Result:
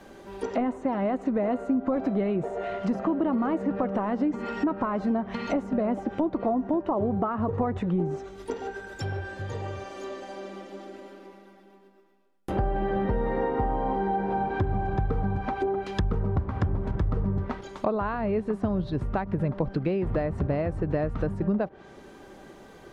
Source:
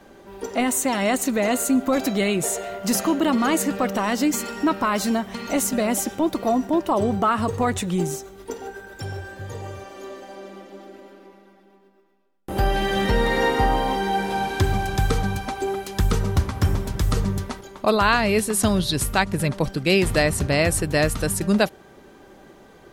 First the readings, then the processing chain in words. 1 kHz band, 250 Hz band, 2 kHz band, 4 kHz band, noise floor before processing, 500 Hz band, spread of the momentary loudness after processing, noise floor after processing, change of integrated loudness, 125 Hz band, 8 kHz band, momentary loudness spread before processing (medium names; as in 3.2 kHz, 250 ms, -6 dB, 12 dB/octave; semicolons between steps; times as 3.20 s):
-6.5 dB, -4.0 dB, -13.0 dB, -19.5 dB, -51 dBFS, -4.5 dB, 11 LU, -51 dBFS, -6.5 dB, -4.0 dB, under -30 dB, 15 LU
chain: compression 16:1, threshold -21 dBFS, peak gain reduction 9 dB; low-pass that closes with the level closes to 1 kHz, closed at -23 dBFS